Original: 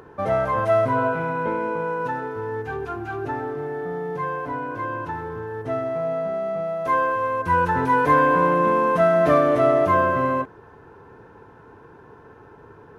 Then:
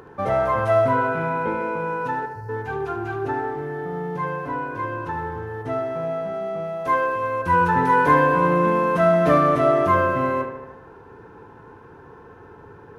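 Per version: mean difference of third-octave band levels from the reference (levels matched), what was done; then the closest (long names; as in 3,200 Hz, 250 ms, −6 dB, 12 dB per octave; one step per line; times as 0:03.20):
1.5 dB: time-frequency box erased 0:02.26–0:02.49, 210–4,100 Hz
notch filter 630 Hz, Q 12
on a send: feedback echo with a low-pass in the loop 74 ms, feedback 64%, low-pass 3,200 Hz, level −7 dB
on the sum: level +1 dB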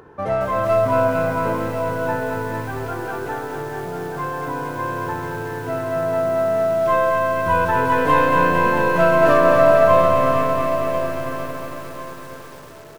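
8.0 dB: stylus tracing distortion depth 0.075 ms
repeating echo 1,041 ms, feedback 32%, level −9 dB
feedback echo at a low word length 226 ms, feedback 80%, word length 7 bits, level −5 dB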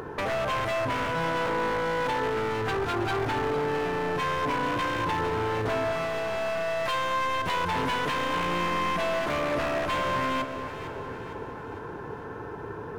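11.5 dB: downward compressor 10 to 1, threshold −30 dBFS, peak gain reduction 17 dB
wave folding −31.5 dBFS
delay that swaps between a low-pass and a high-pass 228 ms, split 1,500 Hz, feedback 72%, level −8 dB
level +8 dB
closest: first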